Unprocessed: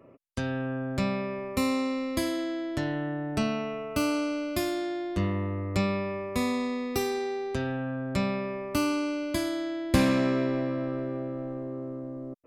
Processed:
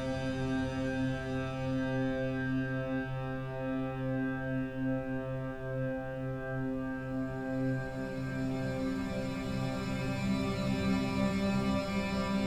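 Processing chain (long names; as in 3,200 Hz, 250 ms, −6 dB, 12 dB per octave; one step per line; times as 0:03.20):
extreme stretch with random phases 21×, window 0.50 s, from 0:00.45
background noise brown −44 dBFS
level −3.5 dB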